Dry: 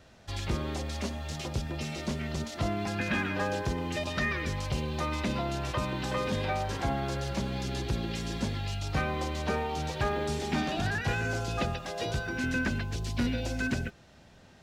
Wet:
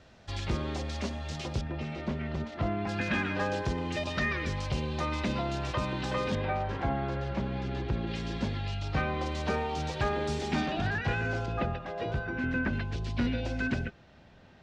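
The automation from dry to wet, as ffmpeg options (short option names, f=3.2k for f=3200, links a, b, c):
-af "asetnsamples=n=441:p=0,asendcmd='1.61 lowpass f 2400;2.89 lowpass f 6100;6.35 lowpass f 2400;8.07 lowpass f 4000;9.26 lowpass f 6800;10.66 lowpass f 3600;11.46 lowpass f 2100;12.73 lowpass f 3700',lowpass=6.1k"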